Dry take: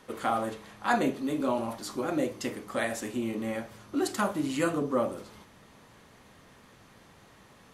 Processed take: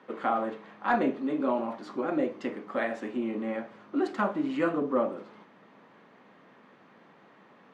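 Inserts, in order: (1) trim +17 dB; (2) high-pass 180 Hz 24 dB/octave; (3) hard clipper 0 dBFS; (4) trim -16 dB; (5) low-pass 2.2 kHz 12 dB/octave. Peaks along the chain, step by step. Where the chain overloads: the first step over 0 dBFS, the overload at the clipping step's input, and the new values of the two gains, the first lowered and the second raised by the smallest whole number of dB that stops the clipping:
+6.5 dBFS, +4.5 dBFS, 0.0 dBFS, -16.0 dBFS, -15.5 dBFS; step 1, 4.5 dB; step 1 +12 dB, step 4 -11 dB

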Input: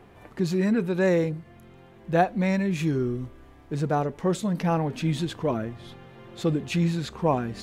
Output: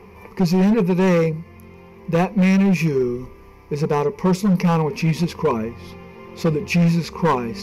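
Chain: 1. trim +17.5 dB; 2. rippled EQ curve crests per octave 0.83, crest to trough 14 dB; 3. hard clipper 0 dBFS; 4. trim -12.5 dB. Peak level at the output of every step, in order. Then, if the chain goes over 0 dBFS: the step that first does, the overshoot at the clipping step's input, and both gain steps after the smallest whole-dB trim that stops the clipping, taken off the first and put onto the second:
+10.0 dBFS, +10.0 dBFS, 0.0 dBFS, -12.5 dBFS; step 1, 10.0 dB; step 1 +7.5 dB, step 4 -2.5 dB

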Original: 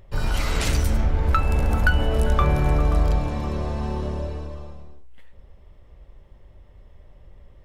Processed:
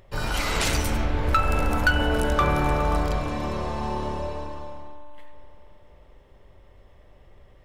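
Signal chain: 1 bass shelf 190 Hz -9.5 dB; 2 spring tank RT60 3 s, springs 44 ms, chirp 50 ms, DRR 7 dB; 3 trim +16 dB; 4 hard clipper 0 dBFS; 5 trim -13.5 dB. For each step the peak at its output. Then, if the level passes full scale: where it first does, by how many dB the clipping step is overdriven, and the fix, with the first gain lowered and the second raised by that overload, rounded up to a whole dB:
-10.0 dBFS, -9.5 dBFS, +6.5 dBFS, 0.0 dBFS, -13.5 dBFS; step 3, 6.5 dB; step 3 +9 dB, step 5 -6.5 dB

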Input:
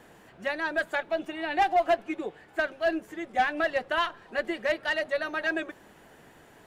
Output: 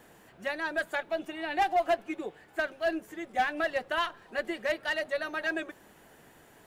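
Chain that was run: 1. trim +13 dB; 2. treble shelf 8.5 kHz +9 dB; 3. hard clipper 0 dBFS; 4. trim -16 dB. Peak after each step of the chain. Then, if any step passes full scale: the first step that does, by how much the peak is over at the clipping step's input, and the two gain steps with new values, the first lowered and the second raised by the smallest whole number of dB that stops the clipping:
-2.5 dBFS, -2.5 dBFS, -2.5 dBFS, -18.5 dBFS; nothing clips

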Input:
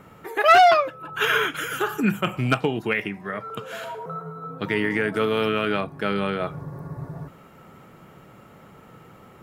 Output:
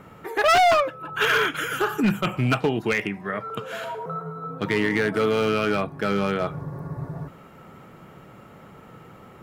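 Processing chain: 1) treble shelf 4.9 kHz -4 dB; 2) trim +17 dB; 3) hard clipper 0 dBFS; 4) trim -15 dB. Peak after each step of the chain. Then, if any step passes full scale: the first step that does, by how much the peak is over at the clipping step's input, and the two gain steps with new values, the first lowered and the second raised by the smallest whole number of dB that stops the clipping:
-7.5 dBFS, +9.5 dBFS, 0.0 dBFS, -15.0 dBFS; step 2, 9.5 dB; step 2 +7 dB, step 4 -5 dB

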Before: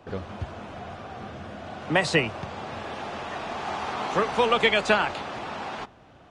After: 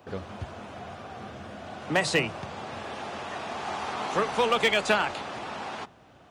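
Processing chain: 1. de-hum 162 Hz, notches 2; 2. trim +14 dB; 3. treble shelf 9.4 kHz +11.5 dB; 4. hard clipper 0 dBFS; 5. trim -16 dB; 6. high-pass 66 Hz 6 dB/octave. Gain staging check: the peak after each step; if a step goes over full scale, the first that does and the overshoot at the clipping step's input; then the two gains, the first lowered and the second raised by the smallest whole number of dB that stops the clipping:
-9.0 dBFS, +5.0 dBFS, +5.5 dBFS, 0.0 dBFS, -16.0 dBFS, -14.5 dBFS; step 2, 5.5 dB; step 2 +8 dB, step 5 -10 dB

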